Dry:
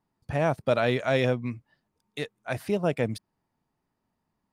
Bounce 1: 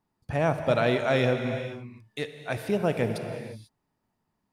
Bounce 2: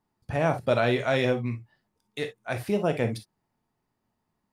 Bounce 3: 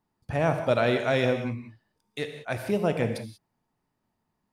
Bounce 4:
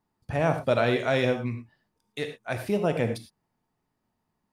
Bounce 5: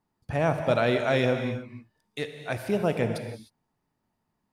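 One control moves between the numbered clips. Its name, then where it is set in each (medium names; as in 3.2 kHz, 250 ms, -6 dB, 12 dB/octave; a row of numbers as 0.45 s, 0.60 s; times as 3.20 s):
gated-style reverb, gate: 520 ms, 80 ms, 210 ms, 130 ms, 330 ms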